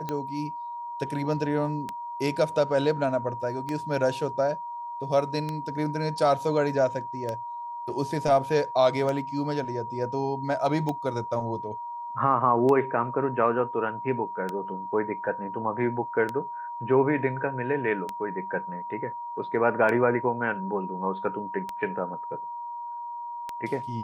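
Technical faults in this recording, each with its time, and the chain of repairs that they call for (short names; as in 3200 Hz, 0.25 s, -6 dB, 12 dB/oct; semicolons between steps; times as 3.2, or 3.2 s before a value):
tick 33 1/3 rpm -17 dBFS
tone 950 Hz -33 dBFS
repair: de-click; notch 950 Hz, Q 30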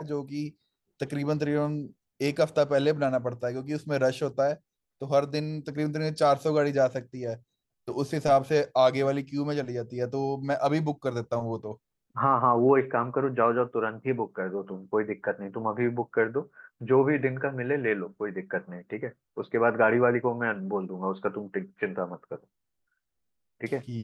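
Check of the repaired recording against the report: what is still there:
none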